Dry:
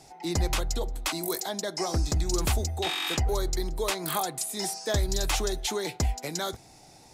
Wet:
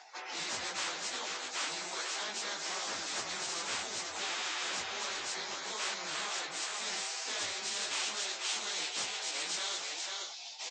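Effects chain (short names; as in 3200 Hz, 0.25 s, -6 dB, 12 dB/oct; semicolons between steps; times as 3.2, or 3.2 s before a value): phase scrambler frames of 50 ms; gate with hold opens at -41 dBFS; HPF 660 Hz 12 dB/oct; bell 1800 Hz -7 dB 0.91 oct; in parallel at +3 dB: compressor 16:1, threshold -40 dBFS, peak gain reduction 15 dB; on the sum: band-pass sweep 1600 Hz -> 3300 Hz, 4–5.85; downsampling 16000 Hz; on a send: echo 0.325 s -12.5 dB; on the sum: plain phase-vocoder stretch 1.5×; spectral compressor 4:1; gain +2 dB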